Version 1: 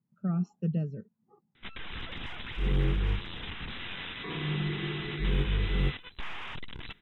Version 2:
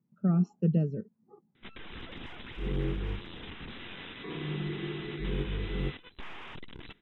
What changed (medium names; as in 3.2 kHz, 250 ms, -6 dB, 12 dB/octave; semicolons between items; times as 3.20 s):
first sound -6.0 dB; second sound -7.0 dB; master: add peaking EQ 340 Hz +8 dB 1.9 oct